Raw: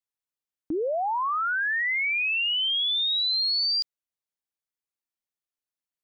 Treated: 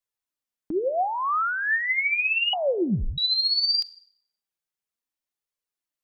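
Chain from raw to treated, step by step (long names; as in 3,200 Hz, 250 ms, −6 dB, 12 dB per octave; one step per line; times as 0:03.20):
four-comb reverb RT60 0.62 s, combs from 33 ms, DRR 17.5 dB
0:02.53–0:03.18: voice inversion scrambler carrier 3,700 Hz
flanger 0.54 Hz, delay 1.7 ms, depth 4.2 ms, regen +42%
level +5.5 dB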